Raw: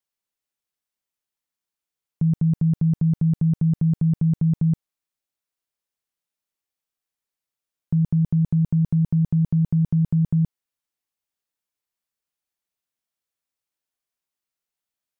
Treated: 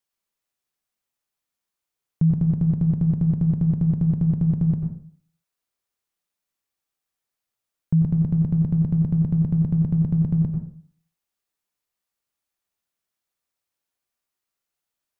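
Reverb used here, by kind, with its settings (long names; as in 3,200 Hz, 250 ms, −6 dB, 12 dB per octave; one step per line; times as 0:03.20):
dense smooth reverb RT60 0.53 s, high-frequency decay 0.3×, pre-delay 80 ms, DRR 3 dB
level +2 dB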